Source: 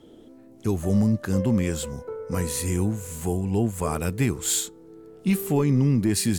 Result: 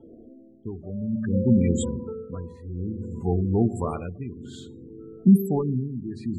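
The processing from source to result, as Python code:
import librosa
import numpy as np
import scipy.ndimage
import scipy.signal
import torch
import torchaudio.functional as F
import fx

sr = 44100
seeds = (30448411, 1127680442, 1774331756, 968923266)

y = fx.rev_fdn(x, sr, rt60_s=1.6, lf_ratio=1.2, hf_ratio=0.4, size_ms=25.0, drr_db=10.0)
y = fx.spec_gate(y, sr, threshold_db=-20, keep='strong')
y = fx.dynamic_eq(y, sr, hz=190.0, q=0.7, threshold_db=-33.0, ratio=4.0, max_db=6, at=(4.4, 5.36), fade=0.02)
y = y * (1.0 - 0.81 / 2.0 + 0.81 / 2.0 * np.cos(2.0 * np.pi * 0.58 * (np.arange(len(y)) / sr)))
y = fx.env_lowpass(y, sr, base_hz=980.0, full_db=-20.5)
y = y * librosa.db_to_amplitude(2.0)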